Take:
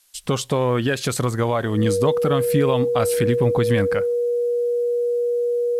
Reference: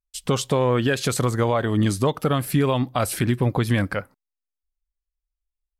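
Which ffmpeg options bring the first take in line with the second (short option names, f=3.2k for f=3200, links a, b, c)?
-af "bandreject=f=480:w=30,agate=range=-21dB:threshold=-19dB"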